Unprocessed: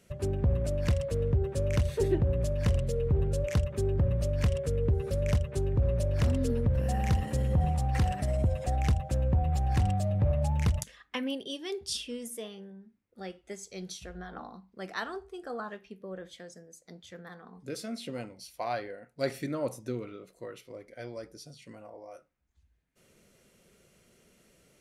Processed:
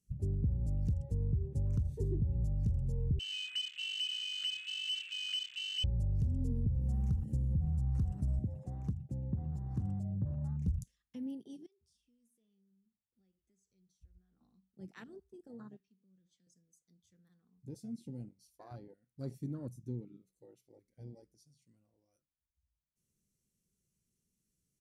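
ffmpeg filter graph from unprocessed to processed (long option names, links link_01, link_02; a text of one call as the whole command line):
ffmpeg -i in.wav -filter_complex "[0:a]asettb=1/sr,asplit=3[link_01][link_02][link_03];[link_01]atrim=end=3.194[link_04];[link_02]atrim=start=3.19:end=5.84,asetpts=PTS-STARTPTS,afade=type=in:duration=0.004:curve=qsin,afade=type=out:start_time=2.646:duration=0.004:curve=qsin,aeval=exprs='val(0)+0.5*0.01*sgn(val(0))':channel_layout=same,lowpass=frequency=2600:width_type=q:width=0.5098,lowpass=frequency=2600:width_type=q:width=0.6013,lowpass=frequency=2600:width_type=q:width=0.9,lowpass=frequency=2600:width_type=q:width=2.563,afreqshift=-3100[link_05];[link_03]atrim=start=5.836[link_06];[link_04][link_05]acrossfade=duration=0.004:curve1=hsin:curve2=qsin[link_07];[link_07][link_06]acrossfade=duration=0.004:curve1=qsin:curve2=hsin,asettb=1/sr,asplit=3[link_08][link_09][link_10];[link_08]atrim=end=8.394[link_11];[link_09]atrim=start=8.39:end=10.68,asetpts=PTS-STARTPTS,afade=type=in:duration=0.004:curve=qsin,afade=type=out:start_time=2.286:duration=0.004:curve=qsin,highpass=160,highshelf=frequency=2400:gain=-8[link_12];[link_10]atrim=start=10.676[link_13];[link_11][link_12]acrossfade=duration=0.004:curve1=hsin:curve2=qsin[link_14];[link_14][link_13]acrossfade=duration=0.004:curve1=qsin:curve2=hsin,asettb=1/sr,asplit=3[link_15][link_16][link_17];[link_15]atrim=end=11.664[link_18];[link_16]atrim=start=11.66:end=14.41,asetpts=PTS-STARTPTS,afade=type=in:duration=0.004:curve=qsin,afade=type=out:start_time=2.746:duration=0.004:curve=qsin,acompressor=threshold=-53dB:ratio=2.5:attack=3.2:release=140:knee=1:detection=peak,highshelf=frequency=3200:gain=-10.5[link_19];[link_17]atrim=start=14.406[link_20];[link_18][link_19]acrossfade=duration=0.004:curve1=hsin:curve2=qsin[link_21];[link_21][link_20]acrossfade=duration=0.004:curve1=qsin:curve2=hsin,asettb=1/sr,asplit=3[link_22][link_23][link_24];[link_22]atrim=end=15.804[link_25];[link_23]atrim=start=15.8:end=16.47,asetpts=PTS-STARTPTS,afade=type=in:duration=0.004:curve=qsin,afade=type=out:start_time=0.666:duration=0.004:curve=qsin,acrossover=split=230|3000[link_26][link_27][link_28];[link_27]acompressor=threshold=-54dB:ratio=6:attack=3.2:release=140:knee=2.83:detection=peak[link_29];[link_26][link_29][link_28]amix=inputs=3:normalize=0,highpass=140,lowpass=6100[link_30];[link_24]atrim=start=16.466[link_31];[link_25][link_30]acrossfade=duration=0.004:curve1=hsin:curve2=qsin[link_32];[link_32][link_31]acrossfade=duration=0.004:curve1=qsin:curve2=hsin,afwtdn=0.0224,firequalizer=gain_entry='entry(140,0);entry(600,-22);entry(6100,0)':delay=0.05:min_phase=1,acompressor=threshold=-29dB:ratio=6" out.wav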